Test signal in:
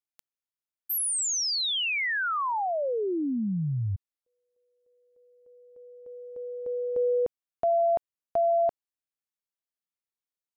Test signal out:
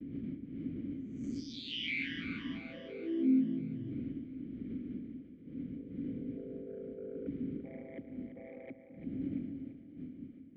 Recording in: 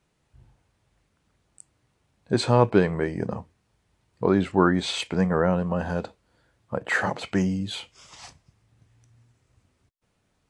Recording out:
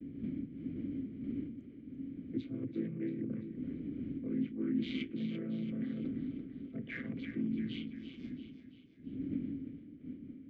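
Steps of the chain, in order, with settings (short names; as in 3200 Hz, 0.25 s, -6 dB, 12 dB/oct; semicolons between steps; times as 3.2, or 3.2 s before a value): chord vocoder minor triad, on A2; wind noise 160 Hz -34 dBFS; reverse; compressor 12:1, threshold -31 dBFS; reverse; soft clip -25.5 dBFS; expander -46 dBFS; vowel filter i; air absorption 66 m; on a send: split-band echo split 310 Hz, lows 0.195 s, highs 0.339 s, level -9.5 dB; on the sum: gain +11.5 dB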